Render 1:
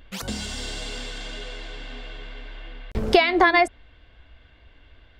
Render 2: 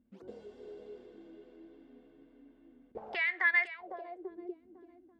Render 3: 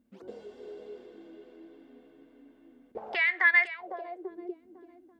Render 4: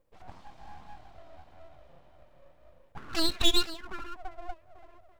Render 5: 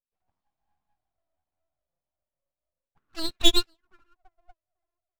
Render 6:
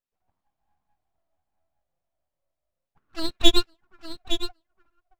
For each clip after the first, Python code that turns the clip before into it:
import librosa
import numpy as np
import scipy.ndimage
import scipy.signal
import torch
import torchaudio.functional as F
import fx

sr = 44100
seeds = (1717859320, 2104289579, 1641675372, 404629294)

y1 = fx.echo_swing(x, sr, ms=840, ratio=1.5, feedback_pct=30, wet_db=-12.5)
y1 = fx.auto_wah(y1, sr, base_hz=220.0, top_hz=1900.0, q=8.3, full_db=-17.0, direction='up')
y2 = fx.low_shelf(y1, sr, hz=180.0, db=-9.5)
y2 = y2 * librosa.db_to_amplitude(5.5)
y3 = y2 + 0.74 * np.pad(y2, (int(3.0 * sr / 1000.0), 0))[:len(y2)]
y3 = np.abs(y3)
y3 = y3 * librosa.db_to_amplitude(-1.5)
y4 = fx.upward_expand(y3, sr, threshold_db=-43.0, expansion=2.5)
y4 = y4 * librosa.db_to_amplitude(6.5)
y5 = fx.high_shelf(y4, sr, hz=3600.0, db=-7.5)
y5 = y5 + 10.0 ** (-9.5 / 20.0) * np.pad(y5, (int(862 * sr / 1000.0), 0))[:len(y5)]
y5 = y5 * librosa.db_to_amplitude(4.0)